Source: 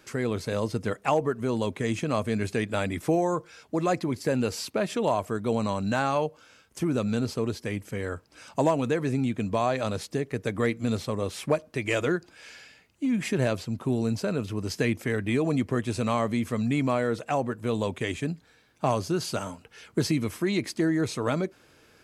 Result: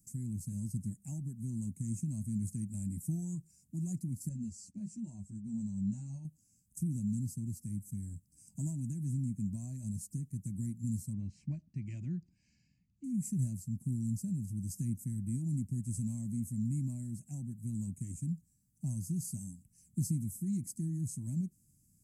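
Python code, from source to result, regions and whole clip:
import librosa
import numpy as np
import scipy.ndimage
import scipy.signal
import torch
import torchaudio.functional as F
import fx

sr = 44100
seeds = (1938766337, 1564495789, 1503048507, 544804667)

y = fx.chain(x, sr, fx.lowpass(hz=7200.0, slope=24),
    fx.ensemble(), at=(4.29, 6.25))
y = fx.chain(y, sr, fx.lowpass(hz=4000.0, slope=24),
    fx.peak_eq(hz=2400.0, db=9.5, octaves=2.3), at=(11.13, 13.04))
y = scipy.signal.sosfilt(scipy.signal.ellip(3, 1.0, 40, [190.0, 7800.0], 'bandstop', fs=sr, output='sos'), y)
y = fx.low_shelf(y, sr, hz=160.0, db=-5.0)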